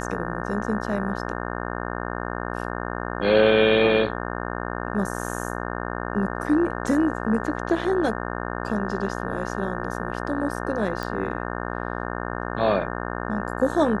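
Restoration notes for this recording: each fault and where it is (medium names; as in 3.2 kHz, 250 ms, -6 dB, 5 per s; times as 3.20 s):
buzz 60 Hz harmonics 30 -30 dBFS
11.03 s: pop -15 dBFS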